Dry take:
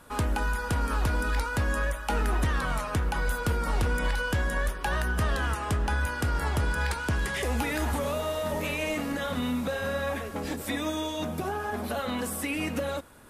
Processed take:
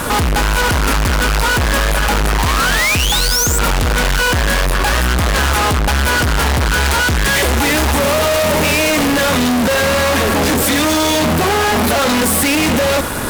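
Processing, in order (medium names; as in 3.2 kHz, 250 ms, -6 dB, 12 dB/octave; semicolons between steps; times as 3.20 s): painted sound rise, 2.38–3.59 s, 870–8200 Hz -30 dBFS; fuzz box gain 50 dB, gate -59 dBFS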